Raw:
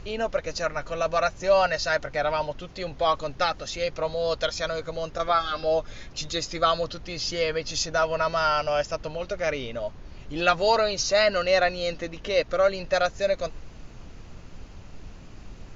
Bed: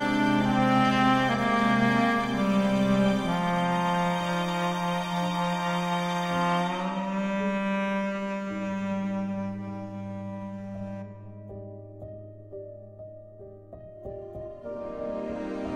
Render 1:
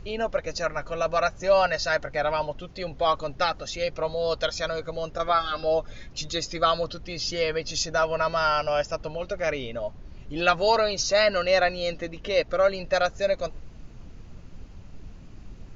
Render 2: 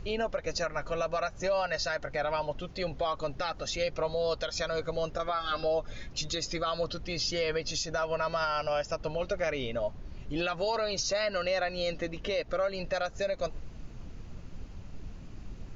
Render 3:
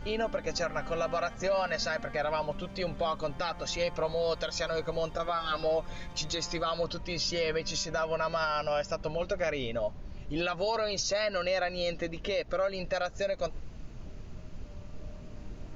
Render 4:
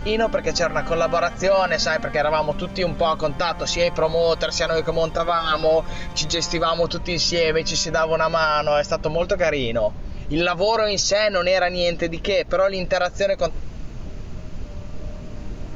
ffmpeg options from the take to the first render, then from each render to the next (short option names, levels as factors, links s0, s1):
-af "afftdn=nr=6:nf=-44"
-af "acompressor=threshold=0.0447:ratio=1.5,alimiter=limit=0.0841:level=0:latency=1:release=122"
-filter_complex "[1:a]volume=0.075[s0];[0:a][s0]amix=inputs=2:normalize=0"
-af "volume=3.55"